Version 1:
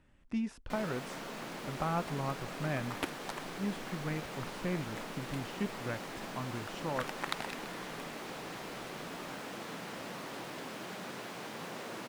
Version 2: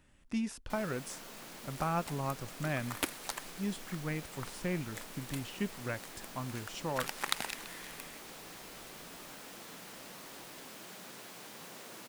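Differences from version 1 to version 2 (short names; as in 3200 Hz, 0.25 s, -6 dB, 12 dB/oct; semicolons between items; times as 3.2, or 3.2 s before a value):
first sound -9.0 dB; master: remove LPF 2200 Hz 6 dB/oct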